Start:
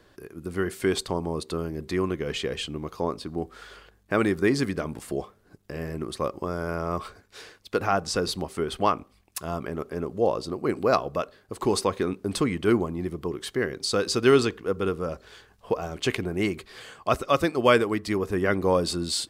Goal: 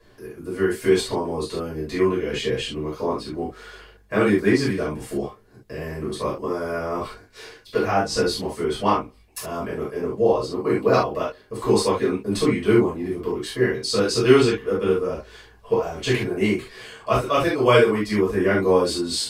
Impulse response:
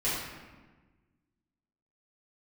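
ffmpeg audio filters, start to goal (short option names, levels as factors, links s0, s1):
-filter_complex "[1:a]atrim=start_sample=2205,atrim=end_sample=3528,asetrate=42336,aresample=44100[s0];[0:a][s0]afir=irnorm=-1:irlink=0,volume=0.668"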